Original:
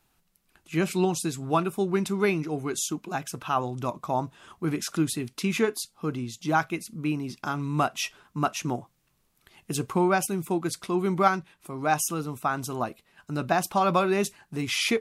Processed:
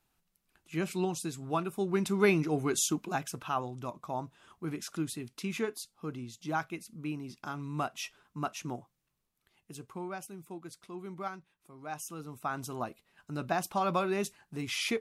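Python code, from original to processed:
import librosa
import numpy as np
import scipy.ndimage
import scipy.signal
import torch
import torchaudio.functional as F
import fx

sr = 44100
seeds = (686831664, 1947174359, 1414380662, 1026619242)

y = fx.gain(x, sr, db=fx.line((1.66, -7.5), (2.34, 0.0), (2.95, 0.0), (3.79, -9.0), (8.74, -9.0), (9.78, -17.0), (11.85, -17.0), (12.56, -7.0)))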